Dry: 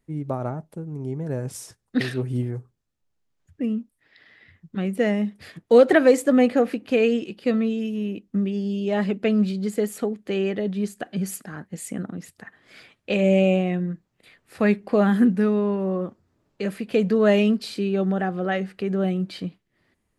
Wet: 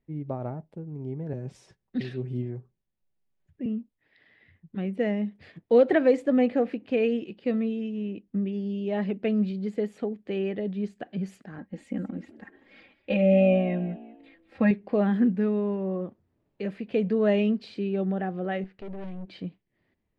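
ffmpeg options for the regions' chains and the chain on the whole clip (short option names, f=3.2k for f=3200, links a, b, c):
-filter_complex "[0:a]asettb=1/sr,asplit=3[a][b][c];[a]atrim=end=1.334[d];[b]atrim=start=1.33:end=3.66,asetpts=PTS-STARTPTS,afade=t=in:d=0.004:c=qsin,afade=t=out:st=2.326:d=0.004:c=qsin,acrossover=split=350|3000[e][f][g];[f]acompressor=threshold=-37dB:ratio=6:attack=3.2:release=140:knee=2.83:detection=peak[h];[e][h][g]amix=inputs=3:normalize=0,aecho=1:1:5.3:0.41,atrim=end_sample=102753[i];[c]atrim=start=3.656[j];[d][i]acrossfade=d=0.004:c1=hsin:c2=qsin[k];[k][j]acrossfade=d=0.004:c1=qsin:c2=hsin,asettb=1/sr,asplit=3[l][m][n];[l]atrim=end=11.584[o];[m]atrim=start=11.58:end=14.71,asetpts=PTS-STARTPTS,afade=t=in:d=0.004:c=qsin,afade=t=out:st=3.126:d=0.004:c=qsin,bass=f=250:g=2,treble=f=4k:g=-6,aecho=1:1:3.7:0.88,atrim=end_sample=138033,asplit=4[p][q][r][s];[q]adelay=192,afreqshift=50,volume=-17dB[t];[r]adelay=384,afreqshift=100,volume=-25.9dB[u];[s]adelay=576,afreqshift=150,volume=-34.7dB[v];[p][t][u][v]amix=inputs=4:normalize=0,atrim=end_sample=138033[w];[n]atrim=start=14.706[x];[o][w]acrossfade=d=0.004:c1=hsin:c2=qsin[y];[y][x]acrossfade=d=0.004:c1=qsin:c2=hsin,asettb=1/sr,asplit=3[z][aa][ab];[z]atrim=end=18.644[ac];[aa]atrim=start=18.64:end=19.28,asetpts=PTS-STARTPTS,afade=t=in:d=0.004:c=qsin,afade=t=out:st=0.636:d=0.004:c=qsin,lowpass=6k,aeval=exprs='(tanh(35.5*val(0)+0.8)-tanh(0.8))/35.5':c=same[ad];[ab]atrim=start=19.276[ae];[ac][ad]acrossfade=d=0.004:c1=hsin:c2=qsin[af];[af][ae]acrossfade=d=0.004:c1=qsin:c2=hsin,lowpass=2.9k,equalizer=f=1.3k:t=o:w=0.76:g=-6.5,volume=-4.5dB"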